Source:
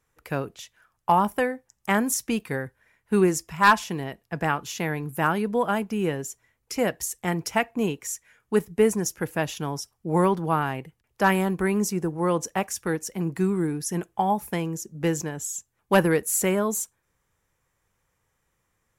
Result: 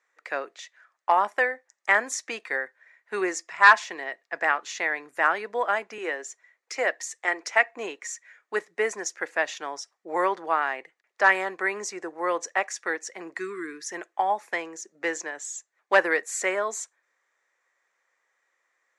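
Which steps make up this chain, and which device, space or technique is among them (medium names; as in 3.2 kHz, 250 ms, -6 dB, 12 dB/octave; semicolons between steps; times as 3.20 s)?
phone speaker on a table (cabinet simulation 440–6700 Hz, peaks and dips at 450 Hz -6 dB, 890 Hz -4 dB, 1.9 kHz +8 dB, 3 kHz -6 dB, 5.3 kHz -4 dB); 5.98–7.66 s: high-pass 240 Hz 24 dB/octave; 13.39–13.87 s: time-frequency box 470–1000 Hz -25 dB; trim +2 dB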